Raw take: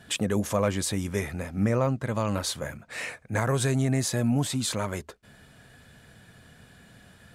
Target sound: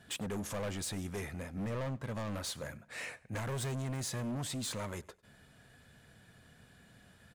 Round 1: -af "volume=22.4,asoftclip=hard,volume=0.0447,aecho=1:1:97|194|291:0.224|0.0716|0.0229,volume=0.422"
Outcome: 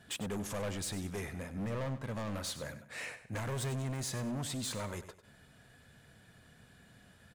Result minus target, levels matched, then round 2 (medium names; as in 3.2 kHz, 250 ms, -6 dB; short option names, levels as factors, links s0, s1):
echo-to-direct +11 dB
-af "volume=22.4,asoftclip=hard,volume=0.0447,aecho=1:1:97|194:0.0631|0.0202,volume=0.422"